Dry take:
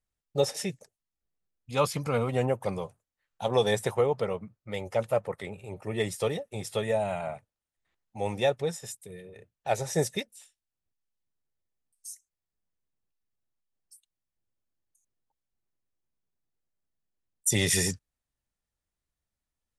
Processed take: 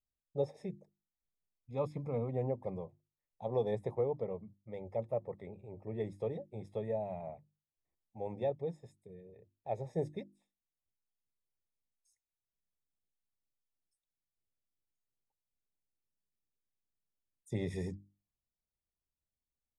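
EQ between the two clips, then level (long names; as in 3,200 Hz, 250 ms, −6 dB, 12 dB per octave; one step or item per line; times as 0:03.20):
moving average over 30 samples
mains-hum notches 50/100/150/200/250/300/350 Hz
−6.5 dB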